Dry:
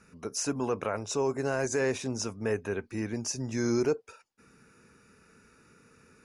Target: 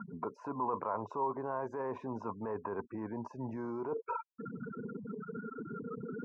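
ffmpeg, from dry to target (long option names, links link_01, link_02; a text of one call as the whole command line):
ffmpeg -i in.wav -filter_complex "[0:a]highpass=130,afftfilt=real='re*gte(hypot(re,im),0.00447)':imag='im*gte(hypot(re,im),0.00447)':win_size=1024:overlap=0.75,asplit=2[link_01][link_02];[link_02]acompressor=mode=upward:threshold=-32dB:ratio=2.5,volume=-2.5dB[link_03];[link_01][link_03]amix=inputs=2:normalize=0,alimiter=limit=-23dB:level=0:latency=1:release=103,areverse,acompressor=threshold=-48dB:ratio=6,areverse,lowpass=frequency=1000:width_type=q:width=10,volume=9dB" out.wav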